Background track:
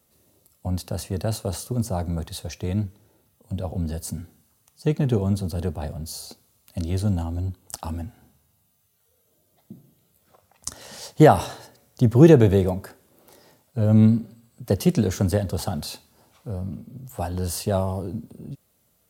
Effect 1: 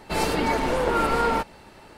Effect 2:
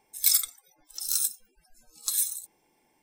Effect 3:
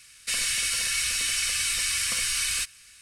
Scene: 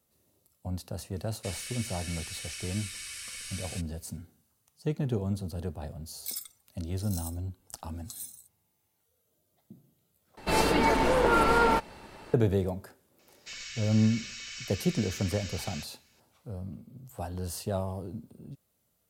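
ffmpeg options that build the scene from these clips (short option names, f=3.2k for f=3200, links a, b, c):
-filter_complex "[3:a]asplit=2[a][b];[0:a]volume=-8.5dB[c];[b]aresample=16000,aresample=44100[d];[c]asplit=2[e][f];[e]atrim=end=10.374[g];[1:a]atrim=end=1.97,asetpts=PTS-STARTPTS,volume=-0.5dB[h];[f]atrim=start=12.336[i];[a]atrim=end=3.01,asetpts=PTS-STARTPTS,volume=-14.5dB,afade=t=in:d=0.004:c=hsin,afade=t=out:st=3.006:d=0.004:c=hsin,adelay=1160[j];[2:a]atrim=end=3.02,asetpts=PTS-STARTPTS,volume=-15dB,afade=t=in:d=0.004:c=hsin,afade=t=out:st=3.016:d=0.004:c=hsin,adelay=6020[k];[d]atrim=end=3.01,asetpts=PTS-STARTPTS,volume=-13.5dB,afade=t=in:d=0.004:c=hsin,afade=t=out:st=3.006:d=0.004:c=hsin,adelay=13190[l];[g][h]acrossfade=d=0.004:c1=hsin:c2=hsin[m];[m][i]acrossfade=d=0.004:c1=hsin:c2=hsin[n];[n][j][k][l]amix=inputs=4:normalize=0"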